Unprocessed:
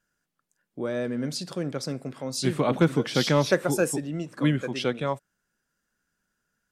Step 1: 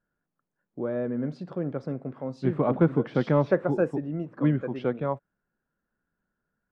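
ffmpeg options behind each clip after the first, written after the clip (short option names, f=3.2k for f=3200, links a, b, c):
-af "lowpass=1.2k"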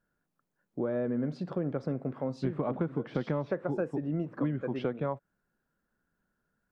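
-af "acompressor=threshold=-29dB:ratio=10,volume=2dB"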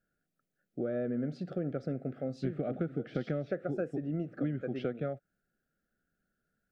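-af "asuperstop=centerf=980:order=8:qfactor=2.1,volume=-2.5dB"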